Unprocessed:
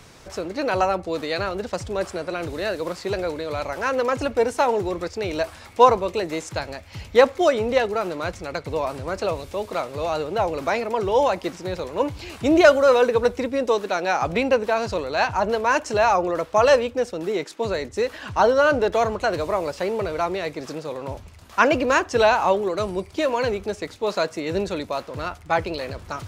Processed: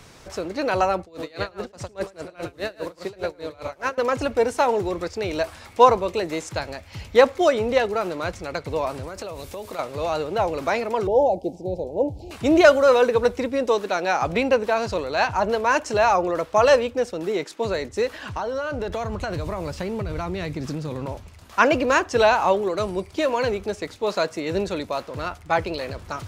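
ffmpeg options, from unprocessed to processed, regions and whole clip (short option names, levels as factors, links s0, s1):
-filter_complex "[0:a]asettb=1/sr,asplit=3[s0][s1][s2];[s0]atrim=end=1.014[s3];[s1]atrim=start=1.01:end=3.98,asetpts=PTS-STARTPTS,afade=t=in:d=0.004:c=qsin,afade=t=out:st=2.966:d=0.004:c=qsin,aecho=1:1:107:0.531,atrim=end_sample=130977,aeval=exprs='val(0)*pow(10,-25*(0.5-0.5*cos(2*PI*4.9*n/s))/20)':c=same[s4];[s2]atrim=start=3.976[s5];[s3][s4]acrossfade=d=0.004:c1=hsin:c2=qsin[s6];[s6][s5]acrossfade=d=0.004:c1=qsin:c2=hsin,asettb=1/sr,asplit=3[s7][s8][s9];[s7]atrim=end=9.034[s10];[s8]atrim=start=9.03:end=9.79,asetpts=PTS-STARTPTS,afade=t=in:d=0.004:c=qsin,afade=t=out:st=0.756:d=0.004:c=qsin,highshelf=f=8400:g=10.5,acompressor=threshold=0.0355:ratio=10:attack=3.2:release=140:knee=1:detection=peak[s11];[s9]atrim=start=9.786[s12];[s10][s11]acrossfade=d=0.004:c1=hsin:c2=qsin[s13];[s13][s12]acrossfade=d=0.004:c1=qsin:c2=hsin,asettb=1/sr,asplit=3[s14][s15][s16];[s14]atrim=end=11.074[s17];[s15]atrim=start=11.07:end=12.31,asetpts=PTS-STARTPTS,afade=t=in:d=0.004:c=qsin,afade=t=out:st=1.236:d=0.004:c=qsin,asuperstop=centerf=1400:order=12:qfactor=0.87,highshelf=f=1700:t=q:w=3:g=-13.5[s18];[s16]atrim=start=12.306[s19];[s17][s18]acrossfade=d=0.004:c1=hsin:c2=qsin[s20];[s20][s19]acrossfade=d=0.004:c1=qsin:c2=hsin,asettb=1/sr,asplit=3[s21][s22][s23];[s21]atrim=end=18.334[s24];[s22]atrim=start=18.33:end=21.06,asetpts=PTS-STARTPTS,afade=t=in:d=0.004:c=qsin,afade=t=out:st=2.726:d=0.004:c=qsin,asubboost=boost=9.5:cutoff=210,acompressor=threshold=0.0708:ratio=16:attack=3.2:release=140:knee=1:detection=peak[s25];[s23]atrim=start=21.056[s26];[s24][s25]acrossfade=d=0.004:c1=hsin:c2=qsin[s27];[s27][s26]acrossfade=d=0.004:c1=qsin:c2=hsin"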